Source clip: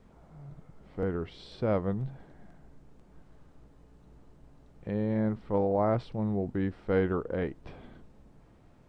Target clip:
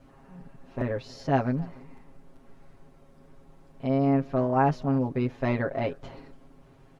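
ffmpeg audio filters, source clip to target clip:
ffmpeg -i in.wav -af "aecho=1:1:361:0.0668,asetrate=56007,aresample=44100,aecho=1:1:7.4:1" out.wav

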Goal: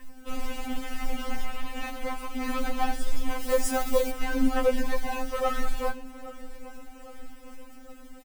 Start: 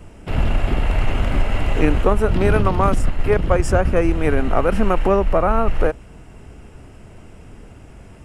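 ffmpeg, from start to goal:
ffmpeg -i in.wav -filter_complex "[0:a]dynaudnorm=framelen=750:gausssize=5:maxgain=10dB,asoftclip=type=tanh:threshold=-14.5dB,asettb=1/sr,asplit=3[link_01][link_02][link_03];[link_01]atrim=end=1.454[link_04];[link_02]atrim=start=1.45:end=2.4,asetpts=PTS-STARTPTS,afade=type=in:duration=0.004:curve=qsin,afade=type=out:start_time=0.946:duration=0.004:curve=qsin,lowshelf=frequency=440:gain=-6[link_05];[link_03]atrim=start=2.396[link_06];[link_04][link_05]acrossfade=duration=0.004:curve1=hsin:curve2=qsin[link_07];[link_07][link_06]acrossfade=duration=0.004:curve1=qsin:curve2=hsin,aeval=exprs='val(0)+0.0251*sin(2*PI*1700*n/s)':channel_layout=same,flanger=delay=8.9:depth=4.4:regen=67:speed=0.28:shape=sinusoidal,acrusher=bits=5:mode=log:mix=0:aa=0.000001,asettb=1/sr,asplit=3[link_08][link_09][link_10];[link_08]atrim=end=3.404[link_11];[link_09]atrim=start=3.4:end=4.11,asetpts=PTS-STARTPTS,afade=type=in:duration=0.004:curve=qsin,afade=type=out:start_time=0.706:duration=0.004:curve=qsin,highshelf=frequency=5300:gain=10.5[link_12];[link_10]atrim=start=4.106[link_13];[link_11][link_12]acrossfade=duration=0.004:curve1=hsin:curve2=qsin[link_14];[link_14][link_13]acrossfade=duration=0.004:curve1=qsin:curve2=hsin,asettb=1/sr,asplit=3[link_15][link_16][link_17];[link_15]atrim=end=4.704[link_18];[link_16]atrim=start=4.7:end=5.22,asetpts=PTS-STARTPTS,afade=type=in:duration=0.004:curve=qsin,afade=type=out:start_time=0.516:duration=0.004:curve=qsin,bandreject=frequency=1300:width=7.3[link_19];[link_17]atrim=start=5.216[link_20];[link_18][link_19]acrossfade=duration=0.004:curve1=hsin:curve2=qsin[link_21];[link_21][link_20]acrossfade=duration=0.004:curve1=qsin:curve2=hsin,asplit=2[link_22][link_23];[link_23]adelay=810,lowpass=frequency=4800:poles=1,volume=-18dB,asplit=2[link_24][link_25];[link_25]adelay=810,lowpass=frequency=4800:poles=1,volume=0.54,asplit=2[link_26][link_27];[link_27]adelay=810,lowpass=frequency=4800:poles=1,volume=0.54,asplit=2[link_28][link_29];[link_29]adelay=810,lowpass=frequency=4800:poles=1,volume=0.54,asplit=2[link_30][link_31];[link_31]adelay=810,lowpass=frequency=4800:poles=1,volume=0.54[link_32];[link_22][link_24][link_26][link_28][link_30][link_32]amix=inputs=6:normalize=0,afftfilt=real='re*3.46*eq(mod(b,12),0)':imag='im*3.46*eq(mod(b,12),0)':win_size=2048:overlap=0.75" out.wav

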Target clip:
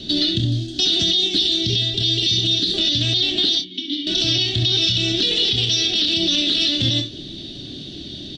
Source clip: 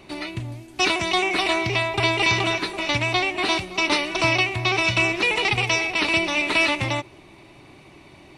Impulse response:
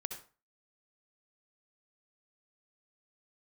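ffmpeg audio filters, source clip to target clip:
-filter_complex "[0:a]acompressor=threshold=-28dB:ratio=3,firequalizer=gain_entry='entry(150,0);entry(240,6);entry(370,-4);entry(650,-11);entry(950,-29);entry(1600,-8);entry(2300,-20);entry(3300,15);entry(11000,-21)':delay=0.05:min_phase=1,acrossover=split=420|3000[link_01][link_02][link_03];[link_02]acompressor=threshold=-31dB:ratio=6[link_04];[link_01][link_04][link_03]amix=inputs=3:normalize=0,asettb=1/sr,asplit=3[link_05][link_06][link_07];[link_05]atrim=end=1.204[link_08];[link_06]atrim=start=1.2:end=2.74,asetpts=PTS-STARTPTS,afade=type=in:duration=0.004:curve=qsin,afade=type=out:start_time=1.536:duration=0.004:curve=qsin,equalizer=frequency=1100:width_type=o:width=2.1:gain=-9.5[link_09];[link_07]atrim=start=2.736[link_10];[link_08][link_09]acrossfade=duration=0.004:curve1=hsin:curve2=qsin[link_11];[link_11][link_10]acrossfade=duration=0.004:curve1=qsin:curve2=hsin,asettb=1/sr,asplit=3[link_12][link_13][link_14];[link_12]atrim=end=3.554[link_15];[link_13]atrim=start=3.55:end=4.07,asetpts=PTS-STARTPTS,afade=type=in:duration=0.004:curve=qsin,afade=type=out:start_time=0.516:duration=0.004:curve=qsin,asplit=3[link_16][link_17][link_18];[link_16]bandpass=frequency=270:width_type=q:width=8,volume=0dB[link_19];[link_17]bandpass=frequency=2290:width_type=q:width=8,volume=-6dB[link_20];[link_18]bandpass=frequency=3010:width_type=q:width=8,volume=-9dB[link_21];[link_19][link_20][link_21]amix=inputs=3:normalize=0[link_22];[link_14]atrim=start=4.066[link_23];[link_15][link_22]acrossfade=duration=0.004:curve1=hsin:curve2=qsin[link_24];[link_24][link_23]acrossfade=duration=0.004:curve1=qsin:curve2=hsin,asplit=2[link_25][link_26];[link_26]adelay=27,volume=-9dB[link_27];[link_25][link_27]amix=inputs=2:normalize=0[link_28];[1:a]atrim=start_sample=2205,atrim=end_sample=3087[link_29];[link_28][link_29]afir=irnorm=-1:irlink=0,alimiter=level_in=22dB:limit=-1dB:release=50:level=0:latency=1,volume=-8dB"

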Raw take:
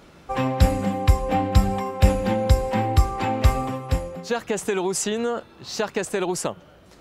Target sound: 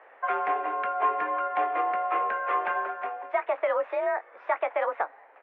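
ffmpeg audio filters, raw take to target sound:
ffmpeg -i in.wav -filter_complex "[0:a]asetrate=56889,aresample=44100,highpass=frequency=470:width_type=q:width=0.5412,highpass=frequency=470:width_type=q:width=1.307,lowpass=frequency=2200:width_type=q:width=0.5176,lowpass=frequency=2200:width_type=q:width=0.7071,lowpass=frequency=2200:width_type=q:width=1.932,afreqshift=53,asplit=2[link_01][link_02];[link_02]adelay=20,volume=-12dB[link_03];[link_01][link_03]amix=inputs=2:normalize=0" out.wav

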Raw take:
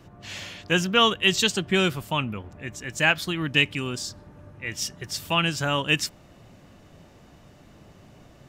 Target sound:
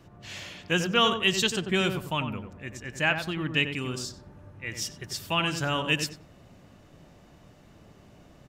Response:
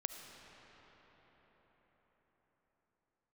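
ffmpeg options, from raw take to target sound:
-filter_complex "[0:a]asettb=1/sr,asplit=3[link_01][link_02][link_03];[link_01]atrim=end=2.774[link_04];[link_02]atrim=start=2.77:end=3.73,asetpts=PTS-STARTPTS,afade=type=in:duration=0.004:curve=qsin,afade=type=out:start_time=0.956:duration=0.004:curve=qsin,highshelf=frequency=4100:gain=-6.5[link_05];[link_03]atrim=start=3.726[link_06];[link_04][link_05]acrossfade=duration=0.004:curve1=hsin:curve2=qsin[link_07];[link_07][link_06]acrossfade=duration=0.004:curve1=qsin:curve2=hsin,asplit=2[link_08][link_09];[link_09]adelay=93,lowpass=frequency=1200:poles=1,volume=-5.5dB,asplit=2[link_10][link_11];[link_11]adelay=93,lowpass=frequency=1200:poles=1,volume=0.3,asplit=2[link_12][link_13];[link_13]adelay=93,lowpass=frequency=1200:poles=1,volume=0.3,asplit=2[link_14][link_15];[link_15]adelay=93,lowpass=frequency=1200:poles=1,volume=0.3[link_16];[link_08][link_10][link_12][link_14][link_16]amix=inputs=5:normalize=0,volume=-3.5dB"

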